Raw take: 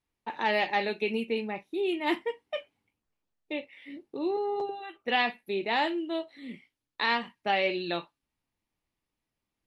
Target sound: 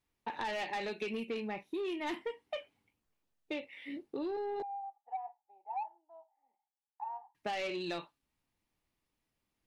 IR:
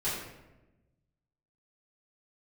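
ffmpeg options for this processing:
-filter_complex "[0:a]asettb=1/sr,asplit=3[link_01][link_02][link_03];[link_01]atrim=end=4.624[link_04];[link_02]atrim=start=4.62:end=7.35,asetpts=PTS-STARTPTS,afade=type=in:duration=0.004:curve=qsin,afade=type=out:start_time=2.726:duration=0.004:curve=qsin,asuperpass=centerf=820:order=4:qfactor=7.4[link_05];[link_03]atrim=start=7.346[link_06];[link_04][link_05]acrossfade=duration=0.004:curve1=hsin:curve2=qsin[link_07];[link_07][link_06]acrossfade=duration=0.004:curve1=qsin:curve2=hsin,asoftclip=type=tanh:threshold=-25.5dB,acompressor=threshold=-36dB:ratio=6,volume=1dB"

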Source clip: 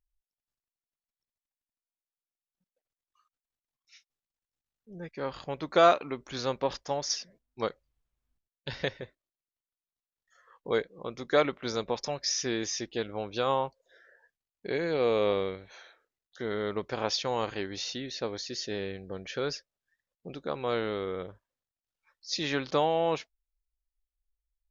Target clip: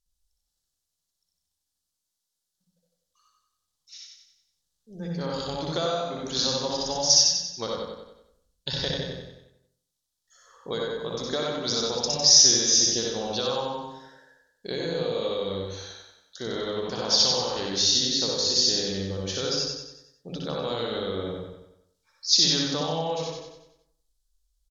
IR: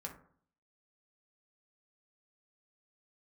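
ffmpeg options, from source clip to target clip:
-filter_complex "[0:a]aemphasis=mode=reproduction:type=75fm,asplit=2[link_01][link_02];[1:a]atrim=start_sample=2205,lowshelf=frequency=93:gain=11,adelay=61[link_03];[link_02][link_03]afir=irnorm=-1:irlink=0,volume=3dB[link_04];[link_01][link_04]amix=inputs=2:normalize=0,acompressor=threshold=-28dB:ratio=5,aexciter=amount=13.1:drive=3.8:freq=3500,aecho=1:1:93|186|279|372|465|558:0.631|0.303|0.145|0.0698|0.0335|0.0161"

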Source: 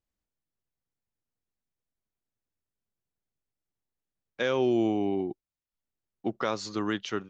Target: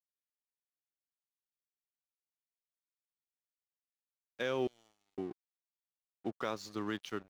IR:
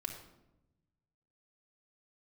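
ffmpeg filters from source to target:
-filter_complex "[0:a]asettb=1/sr,asplit=3[link_01][link_02][link_03];[link_01]atrim=end=4.674[link_04];[link_02]atrim=start=4.67:end=5.18,asetpts=PTS-STARTPTS,afade=type=in:duration=0.004:curve=qsin,afade=type=out:start_time=0.506:duration=0.004:curve=qsin,aderivative[link_05];[link_03]atrim=start=5.176[link_06];[link_04][link_05]acrossfade=duration=0.004:curve1=hsin:curve2=qsin[link_07];[link_07][link_06]acrossfade=duration=0.004:curve1=qsin:curve2=hsin,aeval=exprs='sgn(val(0))*max(abs(val(0))-0.00473,0)':channel_layout=same,volume=-7dB"

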